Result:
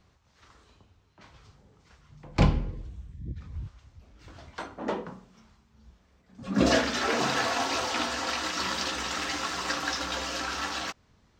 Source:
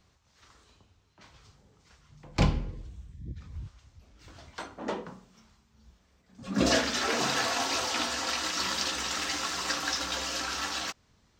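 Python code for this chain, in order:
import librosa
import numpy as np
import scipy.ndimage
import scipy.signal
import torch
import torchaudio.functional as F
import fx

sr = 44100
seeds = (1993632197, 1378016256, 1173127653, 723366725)

y = fx.high_shelf(x, sr, hz=3700.0, db=-8.0)
y = y * 10.0 ** (3.0 / 20.0)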